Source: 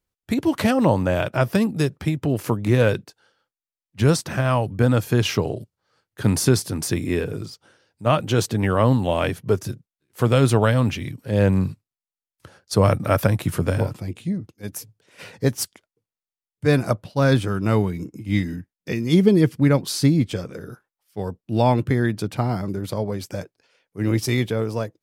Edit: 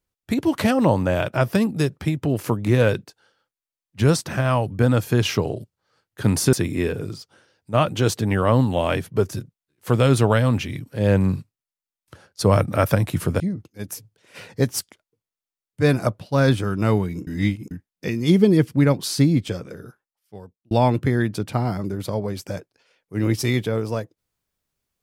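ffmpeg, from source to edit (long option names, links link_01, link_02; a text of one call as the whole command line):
ffmpeg -i in.wav -filter_complex "[0:a]asplit=6[link_01][link_02][link_03][link_04][link_05][link_06];[link_01]atrim=end=6.532[link_07];[link_02]atrim=start=6.848:end=13.722[link_08];[link_03]atrim=start=14.238:end=18.112[link_09];[link_04]atrim=start=18.108:end=18.552,asetpts=PTS-STARTPTS,areverse[link_10];[link_05]atrim=start=18.548:end=21.55,asetpts=PTS-STARTPTS,afade=type=out:start_time=1.772:duration=1.23[link_11];[link_06]atrim=start=21.55,asetpts=PTS-STARTPTS,afade=type=in:duration=0.004:curve=hsin[link_12];[link_07][link_08]acrossfade=duration=0.004:curve1=hsin:curve2=hsin[link_13];[link_13][link_09]acrossfade=duration=0.004:curve1=hsin:curve2=hsin[link_14];[link_14][link_10]acrossfade=duration=0.004:curve1=hsin:curve2=hsin[link_15];[link_11][link_12]concat=n=2:v=0:a=1[link_16];[link_15][link_16]acrossfade=duration=0.004:curve1=hsin:curve2=hsin" out.wav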